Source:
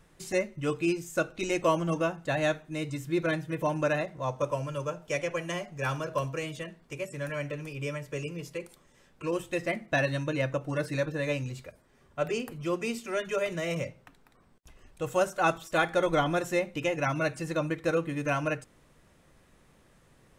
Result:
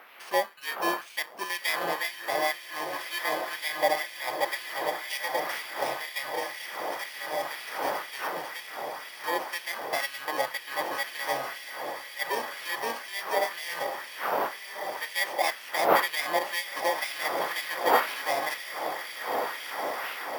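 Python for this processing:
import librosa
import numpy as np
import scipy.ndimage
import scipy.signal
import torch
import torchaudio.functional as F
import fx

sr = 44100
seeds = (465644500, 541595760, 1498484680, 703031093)

y = fx.bit_reversed(x, sr, seeds[0], block=32)
y = fx.dmg_wind(y, sr, seeds[1], corner_hz=520.0, level_db=-35.0)
y = fx.air_absorb(y, sr, metres=150.0)
y = fx.echo_diffused(y, sr, ms=1515, feedback_pct=66, wet_db=-6.5)
y = fx.filter_lfo_highpass(y, sr, shape='sine', hz=2.0, low_hz=690.0, high_hz=2500.0, q=1.4)
y = np.repeat(y[::3], 3)[:len(y)]
y = y * 10.0 ** (6.0 / 20.0)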